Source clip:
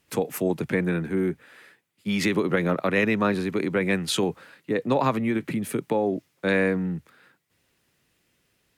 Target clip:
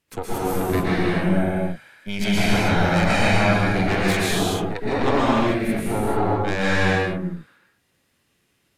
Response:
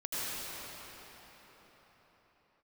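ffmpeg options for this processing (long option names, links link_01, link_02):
-filter_complex "[0:a]aeval=exprs='0.398*(cos(1*acos(clip(val(0)/0.398,-1,1)))-cos(1*PI/2))+0.1*(cos(6*acos(clip(val(0)/0.398,-1,1)))-cos(6*PI/2))':channel_layout=same,asettb=1/sr,asplit=3[link_01][link_02][link_03];[link_01]atrim=end=1.044[link_04];[link_02]atrim=start=1.04:end=3.62,asetpts=PTS-STARTPTS,afade=type=in:duration=0.004:curve=qsin,afade=type=out:start_time=2.576:duration=0.004:curve=qsin,aecho=1:1:1.3:0.49,atrim=end_sample=113778[link_05];[link_03]atrim=start=3.616[link_06];[link_04][link_05]acrossfade=duration=0.004:curve1=hsin:curve2=qsin[link_07];[link_07][link_06]acrossfade=duration=0.004:curve1=qsin:curve2=hsin[link_08];[1:a]atrim=start_sample=2205,afade=type=out:start_time=0.35:duration=0.01,atrim=end_sample=15876,asetrate=29547,aresample=44100[link_09];[link_08][link_09]afir=irnorm=-1:irlink=0,volume=-4.5dB"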